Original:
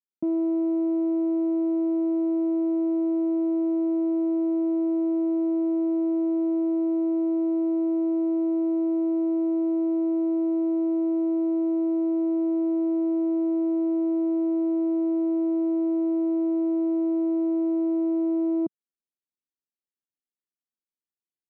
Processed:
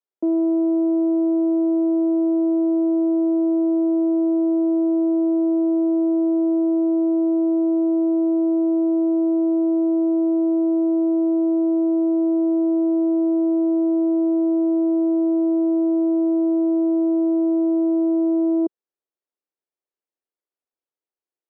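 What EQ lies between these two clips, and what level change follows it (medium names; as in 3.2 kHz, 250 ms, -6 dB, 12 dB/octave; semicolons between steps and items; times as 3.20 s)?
high-pass 400 Hz 24 dB/octave; tilt EQ -5.5 dB/octave; +4.0 dB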